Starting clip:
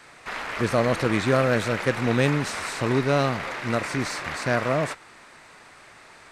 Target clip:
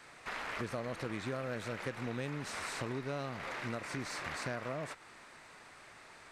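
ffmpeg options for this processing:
-af "acompressor=threshold=-30dB:ratio=5,volume=-6.5dB"

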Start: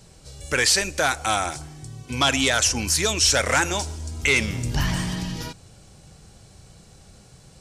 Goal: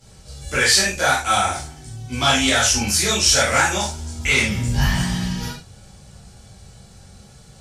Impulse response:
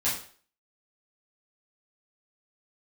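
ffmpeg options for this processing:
-filter_complex "[1:a]atrim=start_sample=2205,afade=t=out:st=0.14:d=0.01,atrim=end_sample=6615,asetrate=36162,aresample=44100[a];[0:a][a]afir=irnorm=-1:irlink=0,volume=-6.5dB"

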